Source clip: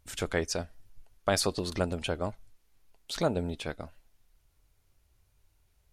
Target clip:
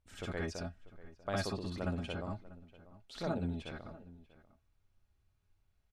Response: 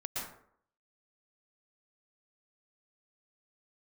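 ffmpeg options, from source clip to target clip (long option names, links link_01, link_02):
-filter_complex "[0:a]aemphasis=mode=reproduction:type=50kf,asplit=2[link_01][link_02];[link_02]adelay=641.4,volume=-18dB,highshelf=frequency=4000:gain=-14.4[link_03];[link_01][link_03]amix=inputs=2:normalize=0[link_04];[1:a]atrim=start_sample=2205,atrim=end_sample=6174,asetrate=88200,aresample=44100[link_05];[link_04][link_05]afir=irnorm=-1:irlink=0,volume=-1.5dB"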